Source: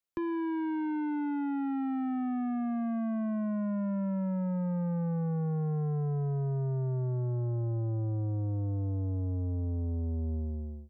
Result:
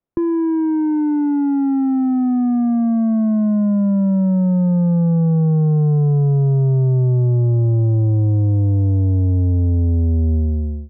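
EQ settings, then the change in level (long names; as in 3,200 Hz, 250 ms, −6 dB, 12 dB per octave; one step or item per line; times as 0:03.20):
high-frequency loss of the air 430 metres
tilt shelving filter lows +9.5 dB, about 1,200 Hz
+7.5 dB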